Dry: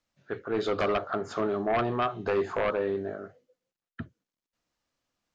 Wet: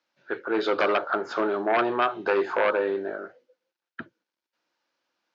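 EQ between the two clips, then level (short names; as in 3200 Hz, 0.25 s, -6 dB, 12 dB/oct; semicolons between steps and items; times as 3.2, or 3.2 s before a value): speaker cabinet 230–5300 Hz, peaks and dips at 340 Hz +8 dB, 540 Hz +6 dB, 900 Hz +9 dB, 1500 Hz +9 dB, 2400 Hz +3 dB; high shelf 2400 Hz +8.5 dB; -1.5 dB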